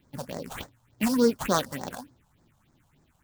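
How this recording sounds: aliases and images of a low sample rate 5.1 kHz, jitter 20%; phasing stages 4, 3.4 Hz, lowest notch 320–2900 Hz

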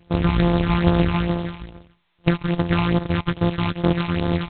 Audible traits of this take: a buzz of ramps at a fixed pitch in blocks of 256 samples; phasing stages 8, 2.4 Hz, lowest notch 460–2400 Hz; G.726

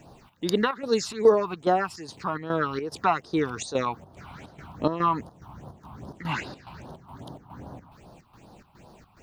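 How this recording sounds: a quantiser's noise floor 12-bit, dither none; phasing stages 6, 2.5 Hz, lowest notch 450–2300 Hz; chopped level 2.4 Hz, depth 65%, duty 70%

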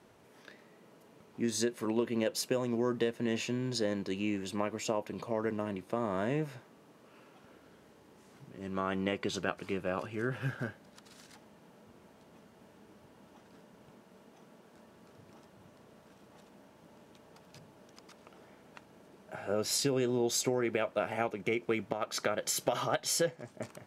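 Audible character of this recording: noise floor -60 dBFS; spectral tilt -4.0 dB/octave

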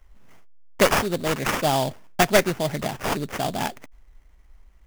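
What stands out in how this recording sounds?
aliases and images of a low sample rate 4.1 kHz, jitter 20%

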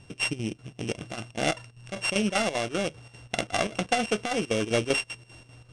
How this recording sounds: a buzz of ramps at a fixed pitch in blocks of 16 samples; chopped level 5.1 Hz, depth 65%, duty 70%; IMA ADPCM

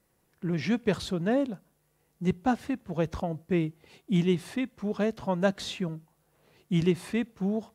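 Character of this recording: noise floor -71 dBFS; spectral tilt -6.0 dB/octave

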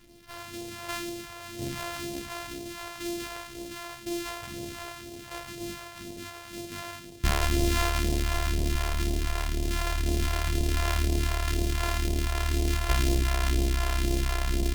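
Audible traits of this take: a buzz of ramps at a fixed pitch in blocks of 128 samples; phasing stages 2, 2 Hz, lowest notch 220–1300 Hz; Opus

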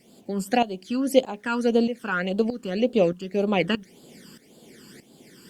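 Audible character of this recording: phasing stages 12, 1.8 Hz, lowest notch 650–2000 Hz; tremolo saw up 1.6 Hz, depth 80%; a quantiser's noise floor 12-bit, dither none; Opus

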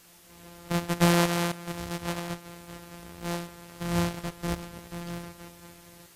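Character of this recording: a buzz of ramps at a fixed pitch in blocks of 256 samples; tremolo saw up 0.66 Hz, depth 75%; a quantiser's noise floor 10-bit, dither triangular; AAC

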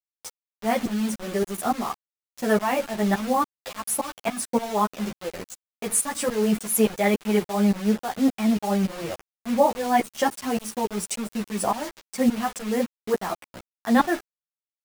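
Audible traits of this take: tremolo saw up 3.5 Hz, depth 95%; a quantiser's noise floor 6-bit, dither none; a shimmering, thickened sound

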